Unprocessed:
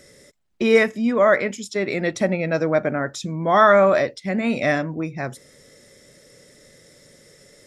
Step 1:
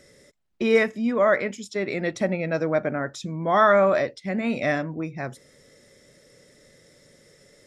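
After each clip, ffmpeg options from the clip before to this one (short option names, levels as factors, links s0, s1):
-af "highshelf=f=7100:g=-5.5,volume=0.668"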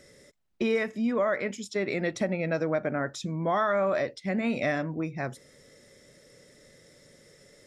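-af "acompressor=threshold=0.0794:ratio=6,volume=0.891"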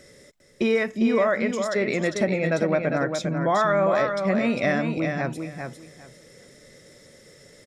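-af "aecho=1:1:401|802|1203:0.501|0.0952|0.0181,volume=1.68"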